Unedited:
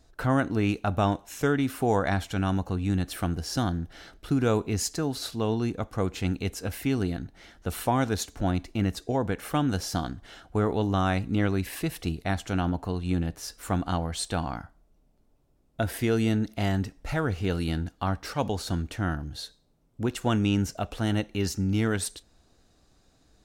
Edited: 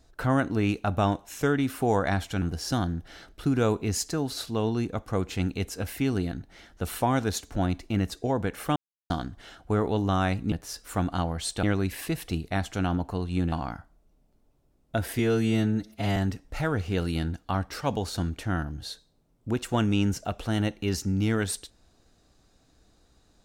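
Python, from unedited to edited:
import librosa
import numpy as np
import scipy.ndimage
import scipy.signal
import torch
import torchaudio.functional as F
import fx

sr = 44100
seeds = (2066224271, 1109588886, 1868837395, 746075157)

y = fx.edit(x, sr, fx.cut(start_s=2.42, length_s=0.85),
    fx.silence(start_s=9.61, length_s=0.34),
    fx.move(start_s=13.26, length_s=1.11, to_s=11.37),
    fx.stretch_span(start_s=16.04, length_s=0.65, factor=1.5), tone=tone)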